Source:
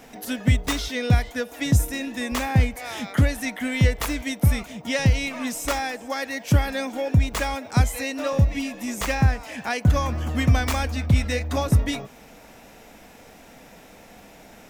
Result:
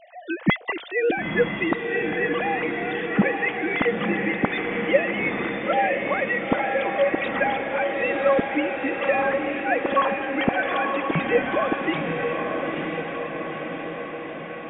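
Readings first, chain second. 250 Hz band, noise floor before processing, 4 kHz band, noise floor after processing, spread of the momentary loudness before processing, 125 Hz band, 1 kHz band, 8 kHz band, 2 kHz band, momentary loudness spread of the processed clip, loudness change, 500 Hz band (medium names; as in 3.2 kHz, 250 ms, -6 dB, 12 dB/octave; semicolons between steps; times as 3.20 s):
+0.5 dB, -48 dBFS, -4.0 dB, -35 dBFS, 7 LU, -14.0 dB, +5.5 dB, under -40 dB, +5.5 dB, 7 LU, 0.0 dB, +8.0 dB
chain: formants replaced by sine waves; echo that smears into a reverb 937 ms, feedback 66%, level -3.5 dB; trim -3.5 dB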